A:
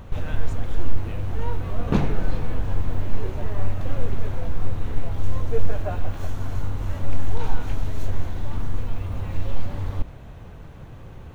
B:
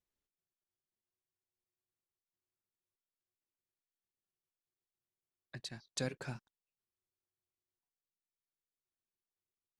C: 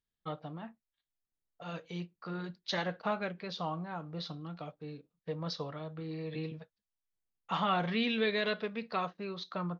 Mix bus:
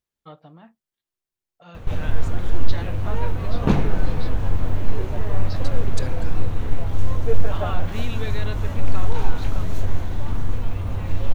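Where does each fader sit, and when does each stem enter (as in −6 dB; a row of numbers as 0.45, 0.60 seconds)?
+2.5, +2.5, −3.0 decibels; 1.75, 0.00, 0.00 seconds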